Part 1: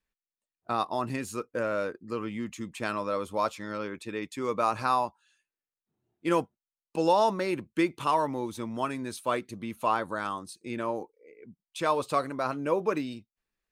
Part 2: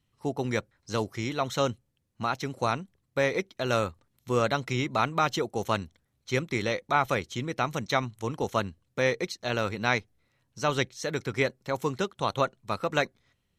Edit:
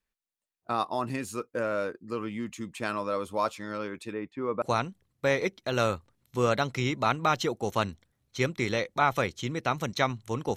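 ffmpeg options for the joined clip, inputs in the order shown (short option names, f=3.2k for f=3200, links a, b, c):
-filter_complex "[0:a]asettb=1/sr,asplit=3[a][b][c];[a]atrim=end=4.134[d];[b]atrim=start=4.13:end=4.62,asetpts=PTS-STARTPTS,afade=t=in:d=0.004:c=qsin,afade=t=out:st=0.486:d=0.004:c=qsin,lowpass=1.6k[e];[c]atrim=start=4.616[f];[d][e]acrossfade=d=0.004:c1=hsin:c2=qsin[g];[g][f]acrossfade=d=0.004:c1=qsin:c2=hsin,apad=whole_dur=10.56,atrim=end=10.56,atrim=end=4.622[h];[1:a]atrim=start=2.548:end=8.49[i];[h][i]acrossfade=d=0.004:c1=hsin:c2=hsin"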